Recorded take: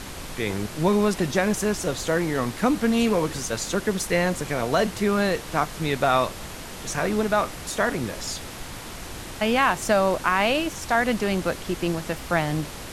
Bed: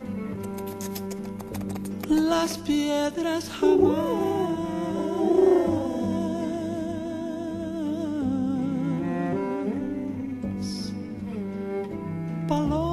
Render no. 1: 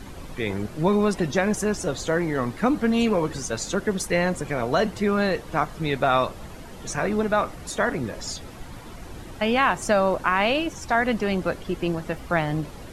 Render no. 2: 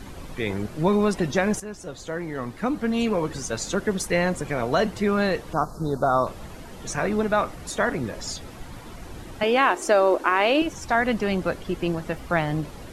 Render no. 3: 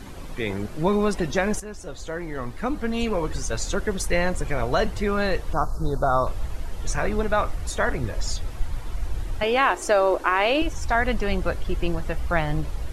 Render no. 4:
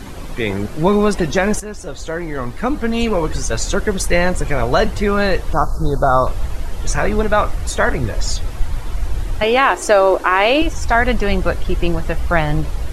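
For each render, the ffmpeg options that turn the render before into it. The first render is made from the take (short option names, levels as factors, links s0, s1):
-af "afftdn=nr=11:nf=-37"
-filter_complex "[0:a]asettb=1/sr,asplit=3[s0][s1][s2];[s0]atrim=end=5.534[s3];[s1]atrim=start=5.53:end=6.27,asetpts=PTS-STARTPTS,afade=t=in:d=0.004:c=qsin,afade=t=out:st=0.736:d=0.004:c=qsin,asuperstop=centerf=2500:order=8:qfactor=0.82[s4];[s2]atrim=start=6.266[s5];[s3][s4]acrossfade=d=0.004:c1=hsin:c2=qsin[s6];[s6][s5]acrossfade=d=0.004:c1=qsin:c2=hsin,asettb=1/sr,asplit=3[s7][s8][s9];[s7]atrim=end=9.434[s10];[s8]atrim=start=9.43:end=10.62,asetpts=PTS-STARTPTS,afade=t=in:d=0.004:c=qsin,afade=t=out:st=1.186:d=0.004:c=qsin,lowshelf=f=220:t=q:w=3:g=-13.5[s11];[s9]atrim=start=10.616[s12];[s10][s11]acrossfade=d=0.004:c1=hsin:c2=qsin[s13];[s13][s12]acrossfade=d=0.004:c1=qsin:c2=hsin,asplit=2[s14][s15];[s14]atrim=end=1.6,asetpts=PTS-STARTPTS,afade=t=out:st=1.596:d=0.004:c=hsin:silence=0.223872[s16];[s15]atrim=start=1.6,asetpts=PTS-STARTPTS,afade=t=in:d=2.05:silence=0.223872[s17];[s16][s17]concat=n=2:v=0:a=1"
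-af "asubboost=boost=8:cutoff=69"
-af "volume=2.37,alimiter=limit=0.891:level=0:latency=1"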